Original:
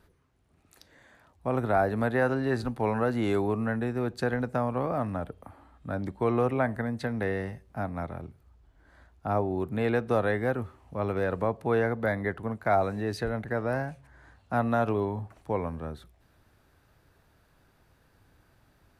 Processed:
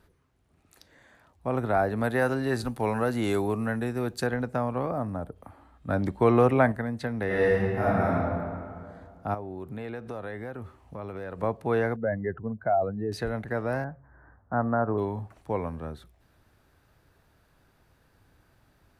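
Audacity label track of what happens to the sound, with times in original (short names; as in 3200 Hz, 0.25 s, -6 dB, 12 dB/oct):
2.040000	4.270000	high shelf 5200 Hz +11.5 dB
4.910000	5.360000	bell 2700 Hz -11.5 dB 1.5 oct
5.890000	6.720000	gain +5.5 dB
7.260000	8.110000	reverb throw, RT60 2.2 s, DRR -9.5 dB
9.340000	11.430000	compressor 4:1, threshold -34 dBFS
11.960000	13.120000	spectral contrast raised exponent 1.9
13.840000	14.980000	steep low-pass 1700 Hz 48 dB/oct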